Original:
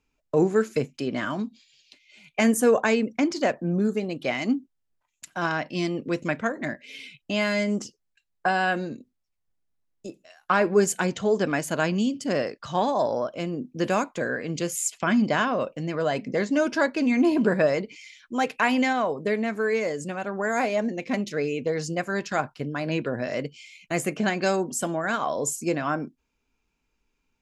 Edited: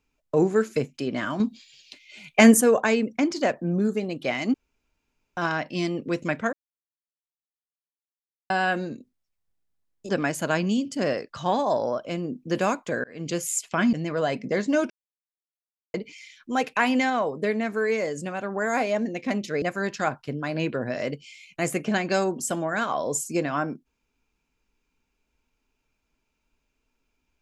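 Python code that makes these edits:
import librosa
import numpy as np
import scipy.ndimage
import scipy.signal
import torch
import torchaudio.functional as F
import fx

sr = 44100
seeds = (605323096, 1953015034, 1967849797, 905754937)

y = fx.edit(x, sr, fx.clip_gain(start_s=1.4, length_s=1.21, db=7.0),
    fx.room_tone_fill(start_s=4.54, length_s=0.83),
    fx.silence(start_s=6.53, length_s=1.97),
    fx.cut(start_s=10.09, length_s=1.29),
    fx.fade_in_span(start_s=14.33, length_s=0.27),
    fx.cut(start_s=15.22, length_s=0.54),
    fx.silence(start_s=16.73, length_s=1.04),
    fx.cut(start_s=21.45, length_s=0.49), tone=tone)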